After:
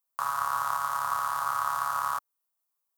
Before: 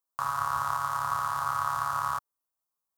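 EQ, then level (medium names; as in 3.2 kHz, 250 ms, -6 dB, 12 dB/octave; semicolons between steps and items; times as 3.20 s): tone controls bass -11 dB, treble -6 dB; treble shelf 5.7 kHz +12 dB; 0.0 dB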